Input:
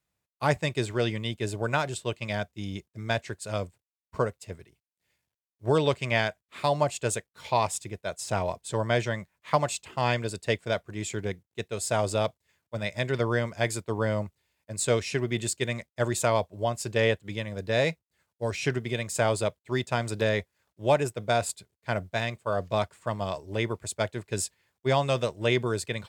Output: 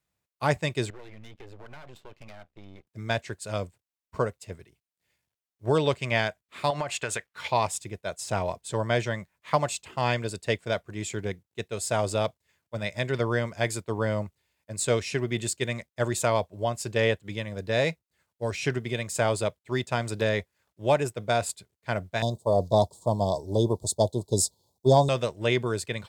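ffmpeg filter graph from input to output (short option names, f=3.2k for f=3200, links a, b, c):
-filter_complex "[0:a]asettb=1/sr,asplit=3[a][b][c];[a]atrim=end=0.904[d];[b]atrim=start=0.9:end=2.87,asetpts=PTS-STARTPTS,afade=t=in:d=0.004:c=qsin,afade=t=out:st=1.966:d=0.004:c=qsin,lowpass=2.9k,aeval=exprs='max(val(0),0)':c=same,acompressor=threshold=-41dB:ratio=5:attack=3.2:release=140:knee=1:detection=peak[e];[c]atrim=start=2.866[f];[d][e]acrossfade=d=0.004:c1=hsin:c2=qsin[g];[g][f]acrossfade=d=0.004:c1=qsin:c2=hsin,asettb=1/sr,asplit=3[h][i][j];[h]atrim=end=6.704[k];[i]atrim=start=6.7:end=7.48,asetpts=PTS-STARTPTS,afade=t=in:d=0.004:c=qsin,afade=t=out:st=0.776:d=0.004:c=qsin,equalizer=f=1.8k:w=0.6:g=12,acompressor=threshold=-25dB:ratio=16:attack=3.2:release=140:knee=1:detection=peak[l];[j]atrim=start=7.476[m];[k][l]acrossfade=d=0.004:c1=hsin:c2=qsin[n];[n][m]acrossfade=d=0.004:c1=qsin:c2=hsin,asettb=1/sr,asplit=3[o][p][q];[o]atrim=end=22.224[r];[p]atrim=start=22.22:end=25.09,asetpts=PTS-STARTPTS,afade=t=in:d=0.004:c=qsin,afade=t=out:st=2.866:d=0.004:c=qsin,asuperstop=centerf=1900:order=12:qfactor=0.71,acontrast=55[s];[q]atrim=start=25.086[t];[r][s]acrossfade=d=0.004:c1=hsin:c2=qsin[u];[u][t]acrossfade=d=0.004:c1=qsin:c2=hsin"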